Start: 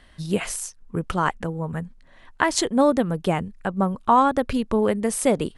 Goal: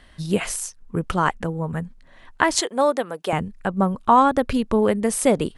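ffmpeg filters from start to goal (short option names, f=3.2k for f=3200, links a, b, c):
-filter_complex "[0:a]asettb=1/sr,asplit=3[a][b][c];[a]atrim=end=2.604[d];[b]atrim=start=2.6:end=3.33,asetpts=PTS-STARTPTS,afade=t=in:d=0.004:c=qsin,afade=t=out:st=0.726:d=0.004:c=qsin,highpass=490[e];[c]atrim=start=3.326[f];[d][e]acrossfade=d=0.004:c1=hsin:c2=qsin[g];[g][f]acrossfade=d=0.004:c1=qsin:c2=hsin,volume=2dB"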